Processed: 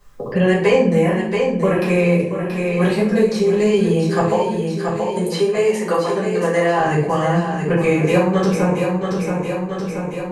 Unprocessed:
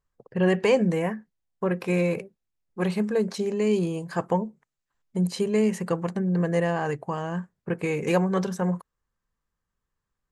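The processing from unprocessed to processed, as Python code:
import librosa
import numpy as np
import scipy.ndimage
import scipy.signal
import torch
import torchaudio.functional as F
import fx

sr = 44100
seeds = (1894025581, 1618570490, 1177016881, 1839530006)

y = fx.highpass(x, sr, hz=390.0, slope=12, at=(4.28, 6.8))
y = fx.echo_feedback(y, sr, ms=678, feedback_pct=42, wet_db=-10)
y = fx.room_shoebox(y, sr, seeds[0], volume_m3=59.0, walls='mixed', distance_m=2.0)
y = fx.band_squash(y, sr, depth_pct=70)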